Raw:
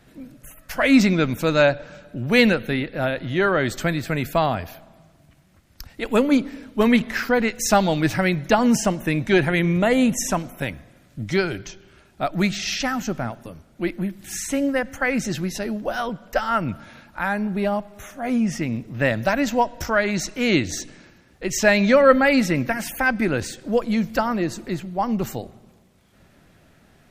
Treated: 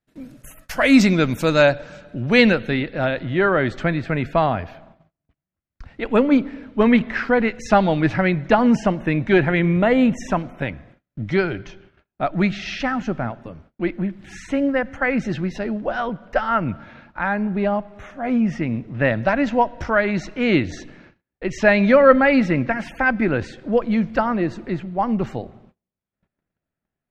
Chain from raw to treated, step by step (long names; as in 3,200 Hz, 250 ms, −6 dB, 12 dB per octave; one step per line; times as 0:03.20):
low-pass filter 12,000 Hz 12 dB per octave, from 0:02.01 4,900 Hz, from 0:03.23 2,600 Hz
noise gate −49 dBFS, range −33 dB
level +2 dB